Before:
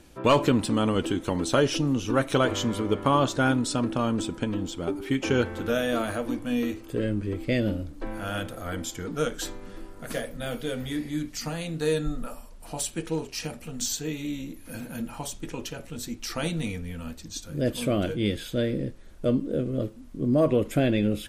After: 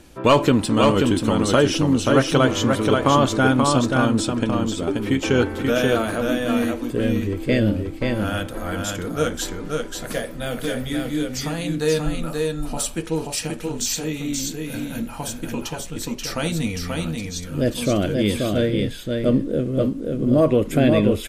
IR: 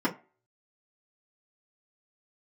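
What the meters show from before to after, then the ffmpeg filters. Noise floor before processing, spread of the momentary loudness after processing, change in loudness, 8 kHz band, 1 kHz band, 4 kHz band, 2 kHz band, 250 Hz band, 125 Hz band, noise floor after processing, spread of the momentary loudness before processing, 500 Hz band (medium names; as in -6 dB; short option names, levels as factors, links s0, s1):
-45 dBFS, 11 LU, +6.5 dB, +6.5 dB, +6.5 dB, +6.5 dB, +6.5 dB, +6.5 dB, +6.5 dB, -34 dBFS, 13 LU, +6.5 dB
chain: -af "aecho=1:1:532:0.668,volume=1.78"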